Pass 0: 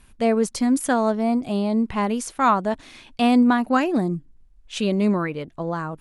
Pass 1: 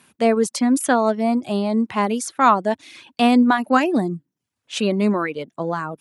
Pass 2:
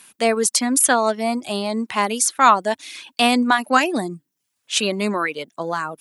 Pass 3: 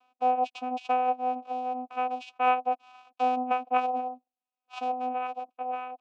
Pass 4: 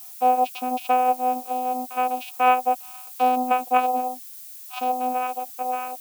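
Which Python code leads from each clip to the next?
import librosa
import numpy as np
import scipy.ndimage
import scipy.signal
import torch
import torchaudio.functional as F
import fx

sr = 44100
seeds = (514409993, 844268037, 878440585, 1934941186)

y1 = scipy.signal.sosfilt(scipy.signal.bessel(8, 180.0, 'highpass', norm='mag', fs=sr, output='sos'), x)
y1 = fx.dereverb_blind(y1, sr, rt60_s=0.52)
y1 = F.gain(torch.from_numpy(y1), 4.0).numpy()
y2 = fx.tilt_eq(y1, sr, slope=3.0)
y2 = F.gain(torch.from_numpy(y2), 1.5).numpy()
y3 = fx.vocoder(y2, sr, bands=4, carrier='saw', carrier_hz=252.0)
y3 = fx.vowel_filter(y3, sr, vowel='a')
y3 = F.gain(torch.from_numpy(y3), 2.5).numpy()
y4 = fx.dmg_noise_colour(y3, sr, seeds[0], colour='violet', level_db=-47.0)
y4 = F.gain(torch.from_numpy(y4), 6.0).numpy()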